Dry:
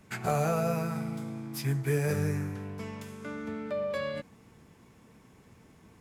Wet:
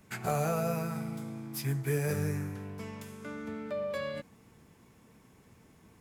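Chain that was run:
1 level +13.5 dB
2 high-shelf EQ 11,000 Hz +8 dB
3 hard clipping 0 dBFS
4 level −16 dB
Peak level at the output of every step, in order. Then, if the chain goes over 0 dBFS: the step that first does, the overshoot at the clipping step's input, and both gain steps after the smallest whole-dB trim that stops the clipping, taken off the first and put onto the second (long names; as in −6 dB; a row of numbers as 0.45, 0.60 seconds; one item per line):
−3.0, −3.0, −3.0, −19.0 dBFS
no step passes full scale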